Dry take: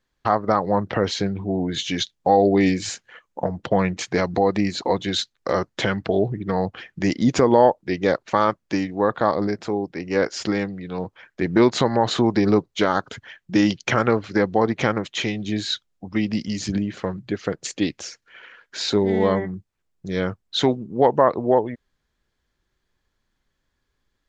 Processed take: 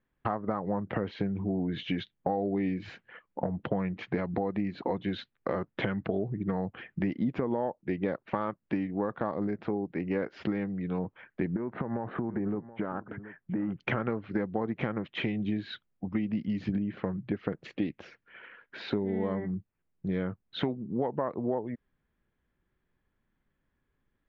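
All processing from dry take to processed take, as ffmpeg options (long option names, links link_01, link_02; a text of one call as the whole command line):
ffmpeg -i in.wav -filter_complex "[0:a]asettb=1/sr,asplit=3[link_01][link_02][link_03];[link_01]atrim=end=11.564[link_04];[link_02]atrim=start=11.56:end=13.8,asetpts=PTS-STARTPTS,afade=type=in:duration=0.004:curve=qsin,afade=type=out:start_time=2.236:duration=0.004:curve=qsin,lowpass=frequency=1800:width=0.5412,lowpass=frequency=1800:width=1.3066,acompressor=threshold=-27dB:ratio=4:attack=3.2:release=140:knee=1:detection=peak,aecho=1:1:727:0.133,atrim=end_sample=98784[link_05];[link_03]atrim=start=13.796[link_06];[link_04][link_05]acrossfade=duration=0.004:curve1=hsin:curve2=qsin[link_07];[link_07][link_06]acrossfade=duration=0.004:curve1=qsin:curve2=hsin,lowpass=frequency=2800:width=0.5412,lowpass=frequency=2800:width=1.3066,equalizer=frequency=190:width=0.74:gain=6.5,acompressor=threshold=-22dB:ratio=6,volume=-5dB" out.wav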